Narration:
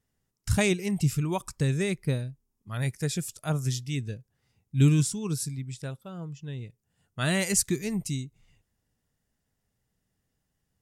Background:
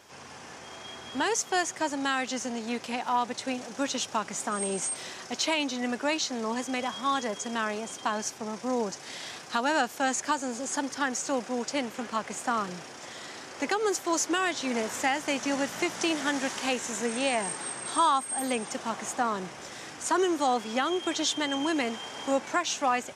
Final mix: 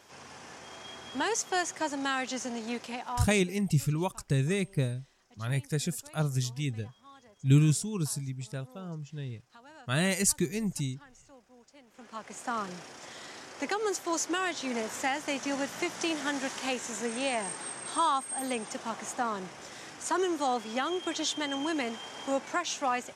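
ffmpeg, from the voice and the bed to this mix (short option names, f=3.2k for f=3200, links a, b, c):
-filter_complex "[0:a]adelay=2700,volume=-1.5dB[a];[1:a]volume=20.5dB,afade=t=out:st=2.69:d=0.85:silence=0.0630957,afade=t=in:st=11.86:d=0.79:silence=0.0707946[b];[a][b]amix=inputs=2:normalize=0"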